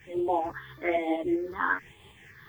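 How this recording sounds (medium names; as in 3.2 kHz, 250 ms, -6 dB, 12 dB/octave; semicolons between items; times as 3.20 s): a quantiser's noise floor 12-bit, dither triangular; phasing stages 6, 1.1 Hz, lowest notch 640–1600 Hz; tremolo saw up 5.2 Hz, depth 40%; a shimmering, thickened sound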